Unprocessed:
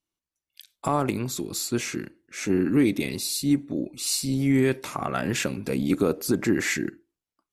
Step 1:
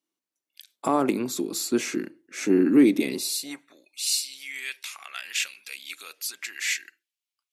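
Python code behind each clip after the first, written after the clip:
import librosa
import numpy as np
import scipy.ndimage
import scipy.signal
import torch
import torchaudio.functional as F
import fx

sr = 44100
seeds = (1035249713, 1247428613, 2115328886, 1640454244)

y = fx.filter_sweep_highpass(x, sr, from_hz=270.0, to_hz=2700.0, start_s=3.14, end_s=3.9, q=1.6)
y = fx.hum_notches(y, sr, base_hz=50, count=3)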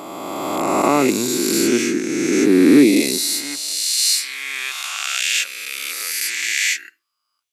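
y = fx.spec_swells(x, sr, rise_s=2.62)
y = F.gain(torch.from_numpy(y), 4.0).numpy()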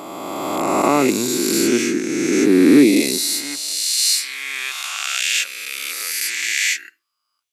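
y = x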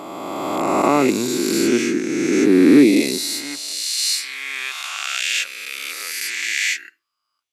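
y = fx.high_shelf(x, sr, hz=6100.0, db=-7.5)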